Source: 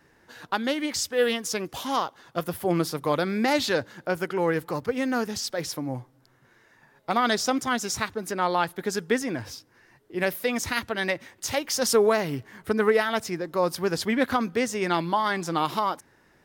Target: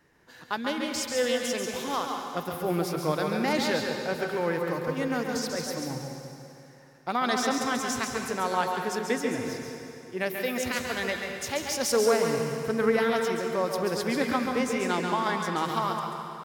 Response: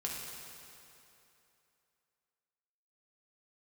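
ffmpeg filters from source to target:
-filter_complex "[0:a]asetrate=45392,aresample=44100,atempo=0.971532,asplit=2[link_01][link_02];[1:a]atrim=start_sample=2205,adelay=137[link_03];[link_02][link_03]afir=irnorm=-1:irlink=0,volume=-3.5dB[link_04];[link_01][link_04]amix=inputs=2:normalize=0,volume=-4.5dB"

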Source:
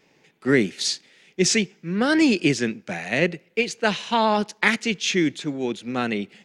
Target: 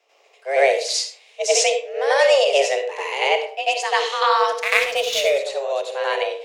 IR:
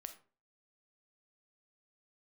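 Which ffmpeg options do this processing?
-filter_complex "[0:a]afreqshift=270,asettb=1/sr,asplit=3[link_01][link_02][link_03];[link_01]atrim=end=4.504[link_04];[link_02]atrim=start=4.5:end=5.32,asetpts=PTS-STARTPTS,afade=type=in:duration=0.004:curve=qsin,afade=type=out:start_time=0.816:duration=0.004:curve=qsin,adynamicsmooth=sensitivity=4.5:basefreq=2000[link_05];[link_03]atrim=start=5.316[link_06];[link_04][link_05]acrossfade=duration=0.004:curve1=hsin:curve2=qsin[link_07];[link_07][link_06]acrossfade=duration=0.004:curve1=qsin:curve2=hsin,asplit=2[link_08][link_09];[1:a]atrim=start_sample=2205,asetrate=33516,aresample=44100,adelay=92[link_10];[link_09][link_10]afir=irnorm=-1:irlink=0,volume=11dB[link_11];[link_08][link_11]amix=inputs=2:normalize=0,volume=-5.5dB"

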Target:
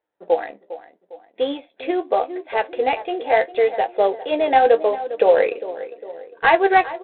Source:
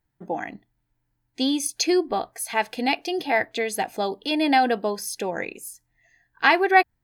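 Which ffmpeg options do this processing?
ffmpeg -i in.wav -filter_complex "[0:a]asettb=1/sr,asplit=3[link_01][link_02][link_03];[link_01]atrim=end=5.174[link_04];[link_02]atrim=start=5.17:end=5.61,asetpts=PTS-STARTPTS,afade=type=in:duration=0.004:curve=qsin,afade=type=out:start_time=0.436:duration=0.004:curve=qsin,acontrast=48[link_05];[link_03]atrim=start=5.606[link_06];[link_04][link_05]acrossfade=duration=0.004:curve1=hsin:curve2=qsin[link_07];[link_07][link_06]acrossfade=duration=0.004:curve1=qsin:curve2=hsin,highpass=frequency=500:width_type=q:width=4.9,asplit=2[link_08][link_09];[link_09]adelay=404,lowpass=frequency=1300:poles=1,volume=-13dB,asplit=2[link_10][link_11];[link_11]adelay=404,lowpass=frequency=1300:poles=1,volume=0.49,asplit=2[link_12][link_13];[link_13]adelay=404,lowpass=frequency=1300:poles=1,volume=0.49,asplit=2[link_14][link_15];[link_15]adelay=404,lowpass=frequency=1300:poles=1,volume=0.49,asplit=2[link_16][link_17];[link_17]adelay=404,lowpass=frequency=1300:poles=1,volume=0.49[link_18];[link_08][link_10][link_12][link_14][link_16][link_18]amix=inputs=6:normalize=0,flanger=delay=8.4:depth=7:regen=46:speed=0.77:shape=triangular,lowpass=2600,volume=4dB" -ar 8000 -c:a adpcm_ima_wav out.wav

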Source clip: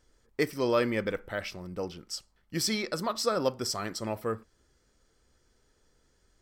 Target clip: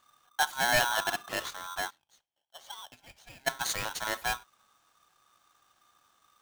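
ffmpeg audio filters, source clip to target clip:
ffmpeg -i in.wav -filter_complex "[0:a]asplit=3[link_01][link_02][link_03];[link_01]afade=type=out:start_time=1.89:duration=0.02[link_04];[link_02]bandpass=frequency=2000:width_type=q:width=9.4:csg=0,afade=type=in:start_time=1.89:duration=0.02,afade=type=out:start_time=3.46:duration=0.02[link_05];[link_03]afade=type=in:start_time=3.46:duration=0.02[link_06];[link_04][link_05][link_06]amix=inputs=3:normalize=0,aeval=exprs='val(0)*sgn(sin(2*PI*1200*n/s))':channel_layout=same" out.wav

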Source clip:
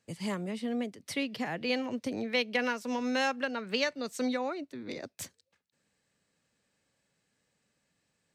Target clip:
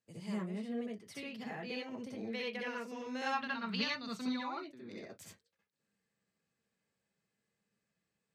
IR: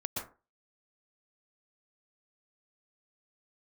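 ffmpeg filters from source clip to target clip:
-filter_complex "[0:a]asplit=3[link_01][link_02][link_03];[link_01]afade=type=out:start_time=3.25:duration=0.02[link_04];[link_02]equalizer=frequency=125:width_type=o:width=1:gain=12,equalizer=frequency=250:width_type=o:width=1:gain=4,equalizer=frequency=500:width_type=o:width=1:gain=-11,equalizer=frequency=1000:width_type=o:width=1:gain=10,equalizer=frequency=4000:width_type=o:width=1:gain=11,equalizer=frequency=8000:width_type=o:width=1:gain=-4,afade=type=in:start_time=3.25:duration=0.02,afade=type=out:start_time=4.59:duration=0.02[link_05];[link_03]afade=type=in:start_time=4.59:duration=0.02[link_06];[link_04][link_05][link_06]amix=inputs=3:normalize=0[link_07];[1:a]atrim=start_sample=2205,afade=type=out:start_time=0.28:duration=0.01,atrim=end_sample=12789,asetrate=83790,aresample=44100[link_08];[link_07][link_08]afir=irnorm=-1:irlink=0,volume=-6.5dB"

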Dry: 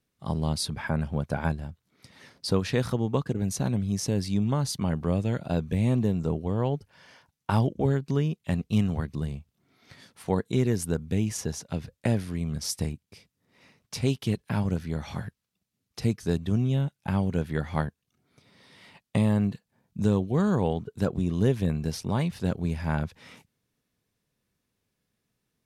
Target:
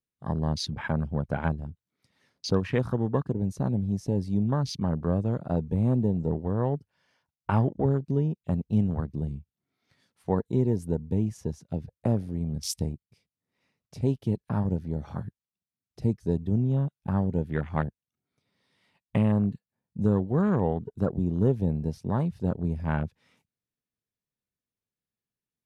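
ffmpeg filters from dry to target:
ffmpeg -i in.wav -af "afwtdn=0.0141" out.wav

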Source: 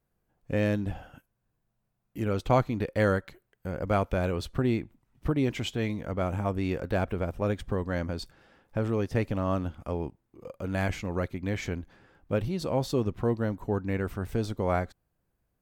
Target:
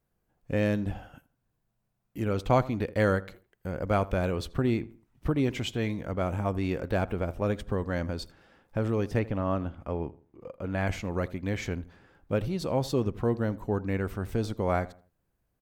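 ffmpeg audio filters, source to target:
ffmpeg -i in.wav -filter_complex "[0:a]asettb=1/sr,asplit=3[link_01][link_02][link_03];[link_01]atrim=end=9.194[link_04];[link_02]atrim=start=9.19:end=10.87,asetpts=PTS-STARTPTS,afade=type=in:duration=0.004:curve=qsin,afade=type=out:start_time=1.676:duration=0.004:curve=qsin,bass=frequency=250:gain=-1,treble=frequency=4000:gain=-12[link_05];[link_03]atrim=start=10.866[link_06];[link_04][link_05]acrossfade=duration=0.004:curve1=hsin:curve2=qsin[link_07];[link_07][link_06]acrossfade=duration=0.004:curve1=qsin:curve2=hsin,asplit=2[link_08][link_09];[link_09]adelay=82,lowpass=frequency=2000:poles=1,volume=-18.5dB,asplit=2[link_10][link_11];[link_11]adelay=82,lowpass=frequency=2000:poles=1,volume=0.34,asplit=2[link_12][link_13];[link_13]adelay=82,lowpass=frequency=2000:poles=1,volume=0.34[link_14];[link_08][link_10][link_12][link_14]amix=inputs=4:normalize=0" out.wav

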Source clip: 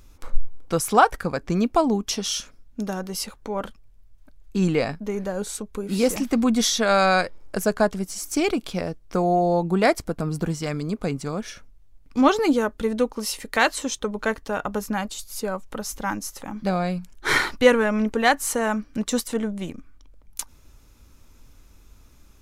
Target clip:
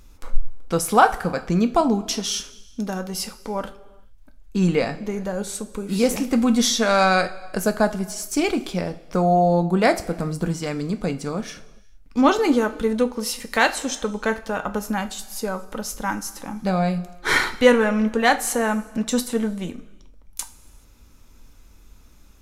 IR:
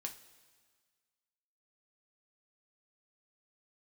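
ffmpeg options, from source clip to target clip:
-filter_complex "[0:a]asplit=2[link_01][link_02];[1:a]atrim=start_sample=2205,afade=type=out:start_time=0.43:duration=0.01,atrim=end_sample=19404,asetrate=37926,aresample=44100[link_03];[link_02][link_03]afir=irnorm=-1:irlink=0,volume=4.5dB[link_04];[link_01][link_04]amix=inputs=2:normalize=0,volume=-6dB"

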